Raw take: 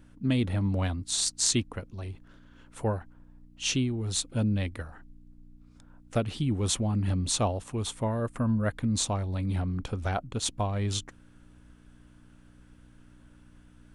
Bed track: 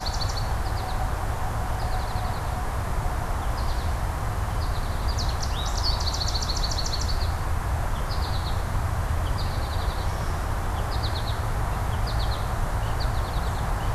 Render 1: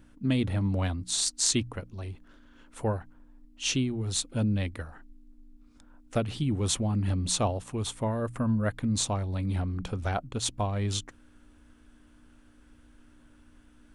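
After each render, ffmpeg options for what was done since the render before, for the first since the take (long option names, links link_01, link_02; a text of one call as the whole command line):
ffmpeg -i in.wav -af "bandreject=frequency=60:width_type=h:width=4,bandreject=frequency=120:width_type=h:width=4,bandreject=frequency=180:width_type=h:width=4" out.wav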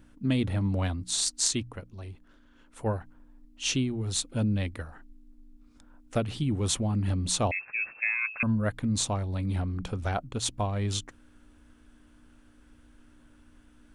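ffmpeg -i in.wav -filter_complex "[0:a]asettb=1/sr,asplit=3[link_01][link_02][link_03];[link_01]atrim=end=7.514[link_04];[link_02]atrim=start=7.51:end=8.43,asetpts=PTS-STARTPTS,afade=type=in:duration=0.004:curve=qsin,afade=type=out:start_time=0.916:duration=0.004:curve=qsin,lowpass=frequency=2300:width_type=q:width=0.5098,lowpass=frequency=2300:width_type=q:width=0.6013,lowpass=frequency=2300:width_type=q:width=0.9,lowpass=frequency=2300:width_type=q:width=2.563,afreqshift=-2700[link_05];[link_03]atrim=start=8.426[link_06];[link_04][link_05]acrossfade=duration=0.004:curve1=hsin:curve2=qsin[link_07];[link_07][link_06]acrossfade=duration=0.004:curve1=qsin:curve2=hsin,asplit=3[link_08][link_09][link_10];[link_08]atrim=end=1.482[link_11];[link_09]atrim=start=1.478:end=2.862,asetpts=PTS-STARTPTS,volume=-3.5dB[link_12];[link_10]atrim=start=2.858[link_13];[link_11][link_12]acrossfade=duration=0.004:curve1=hsin:curve2=hsin[link_14];[link_14][link_13]acrossfade=duration=0.004:curve1=hsin:curve2=hsin" out.wav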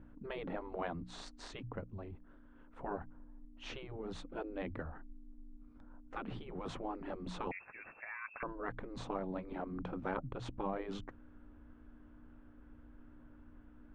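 ffmpeg -i in.wav -af "afftfilt=real='re*lt(hypot(re,im),0.112)':imag='im*lt(hypot(re,im),0.112)':win_size=1024:overlap=0.75,lowpass=1300" out.wav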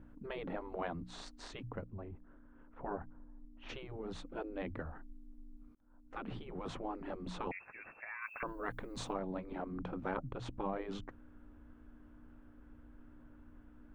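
ffmpeg -i in.wav -filter_complex "[0:a]asplit=3[link_01][link_02][link_03];[link_01]afade=type=out:start_time=1.84:duration=0.02[link_04];[link_02]lowpass=2100,afade=type=in:start_time=1.84:duration=0.02,afade=type=out:start_time=3.68:duration=0.02[link_05];[link_03]afade=type=in:start_time=3.68:duration=0.02[link_06];[link_04][link_05][link_06]amix=inputs=3:normalize=0,asettb=1/sr,asplit=3[link_07][link_08][link_09];[link_07]atrim=end=8.224[link_10];[link_08]atrim=start=8.22:end=9.13,asetpts=PTS-STARTPTS,afade=type=in:duration=0.004:curve=qsin,afade=type=out:start_time=0.906:duration=0.004:curve=qsin,aemphasis=mode=production:type=75kf[link_11];[link_09]atrim=start=9.126[link_12];[link_10][link_11]acrossfade=duration=0.004:curve1=hsin:curve2=qsin[link_13];[link_13][link_12]acrossfade=duration=0.004:curve1=qsin:curve2=hsin,asplit=2[link_14][link_15];[link_14]atrim=end=5.75,asetpts=PTS-STARTPTS,afade=type=out:start_time=5.746:duration=0.004:curve=hsin[link_16];[link_15]atrim=start=5.75,asetpts=PTS-STARTPTS,afade=type=in:duration=0.51[link_17];[link_16][link_17]concat=n=2:v=0:a=1" out.wav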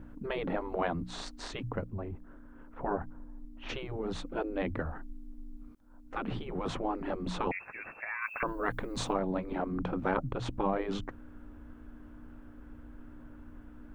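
ffmpeg -i in.wav -af "volume=8dB" out.wav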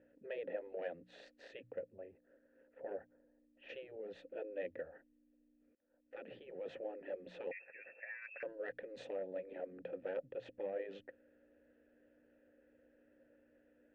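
ffmpeg -i in.wav -filter_complex "[0:a]asoftclip=type=tanh:threshold=-19.5dB,asplit=3[link_01][link_02][link_03];[link_01]bandpass=frequency=530:width_type=q:width=8,volume=0dB[link_04];[link_02]bandpass=frequency=1840:width_type=q:width=8,volume=-6dB[link_05];[link_03]bandpass=frequency=2480:width_type=q:width=8,volume=-9dB[link_06];[link_04][link_05][link_06]amix=inputs=3:normalize=0" out.wav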